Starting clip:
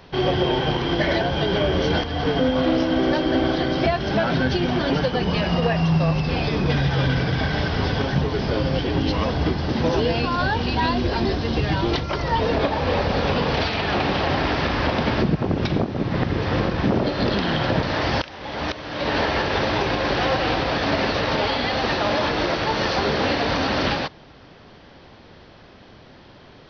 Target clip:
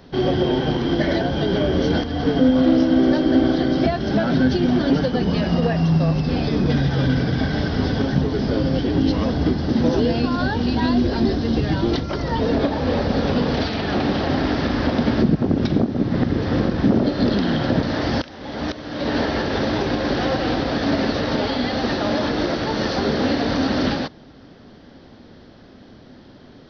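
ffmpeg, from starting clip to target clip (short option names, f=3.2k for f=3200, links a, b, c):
-af "equalizer=f=250:t=o:w=0.67:g=8,equalizer=f=1k:t=o:w=0.67:g=-5,equalizer=f=2.5k:t=o:w=0.67:g=-7"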